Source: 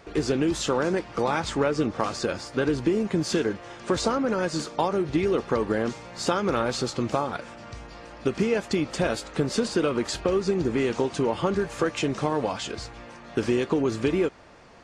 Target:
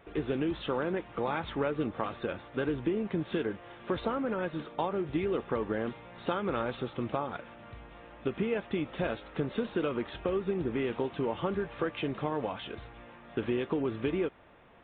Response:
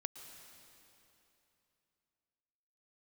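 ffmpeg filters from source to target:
-af "aresample=8000,aresample=44100,volume=-7dB"

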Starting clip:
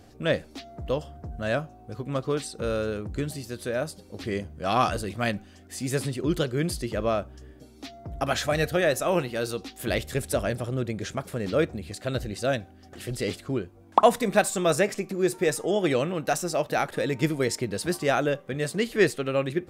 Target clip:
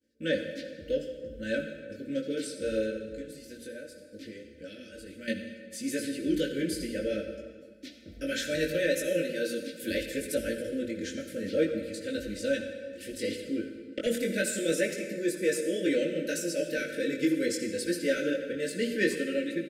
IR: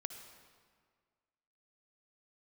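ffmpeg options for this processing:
-filter_complex "[0:a]highpass=frequency=130:poles=1,agate=range=-33dB:threshold=-42dB:ratio=3:detection=peak,equalizer=frequency=340:width=4.7:gain=7,bandreject=frequency=60:width_type=h:width=6,bandreject=frequency=120:width_type=h:width=6,bandreject=frequency=180:width_type=h:width=6,bandreject=frequency=240:width_type=h:width=6,bandreject=frequency=300:width_type=h:width=6,aecho=1:1:3.9:0.82,asettb=1/sr,asplit=3[link_01][link_02][link_03];[link_01]atrim=end=2.904[link_04];[link_02]atrim=start=2.9:end=5.28,asetpts=PTS-STARTPTS,afade=type=in:duration=0.004:curve=qsin,afade=type=out:start_time=2.376:duration=0.004:curve=qsin,acompressor=threshold=-38dB:ratio=3[link_05];[link_03]atrim=start=5.276[link_06];[link_04][link_05]acrossfade=duration=0.004:curve1=hsin:curve2=qsin[link_07];[link_07][link_06]acrossfade=duration=0.004:curve1=qsin:curve2=hsin,flanger=delay=17.5:depth=4.5:speed=0.67,asoftclip=type=tanh:threshold=-12dB,asuperstop=centerf=940:order=20:qfactor=1.2,asplit=2[link_08][link_09];[link_09]adelay=80,highpass=300,lowpass=3400,asoftclip=type=hard:threshold=-19.5dB,volume=-19dB[link_10];[link_08][link_10]amix=inputs=2:normalize=0[link_11];[1:a]atrim=start_sample=2205[link_12];[link_11][link_12]afir=irnorm=-1:irlink=0"

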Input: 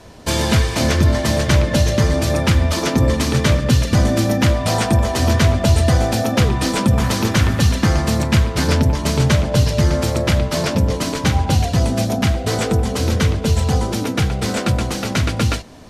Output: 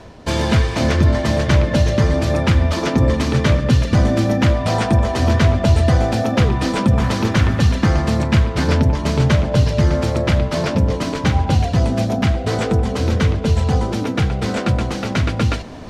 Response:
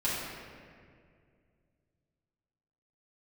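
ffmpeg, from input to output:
-af "aemphasis=mode=reproduction:type=50fm,areverse,acompressor=mode=upward:threshold=-25dB:ratio=2.5,areverse"

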